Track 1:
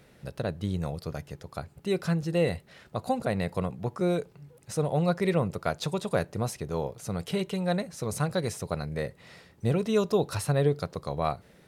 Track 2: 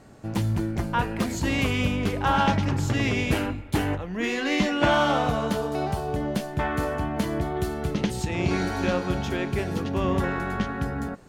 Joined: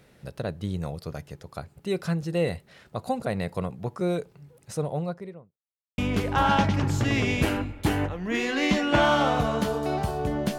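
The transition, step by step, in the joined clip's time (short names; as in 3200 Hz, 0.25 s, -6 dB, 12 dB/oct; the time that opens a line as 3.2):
track 1
4.62–5.57 studio fade out
5.57–5.98 mute
5.98 switch to track 2 from 1.87 s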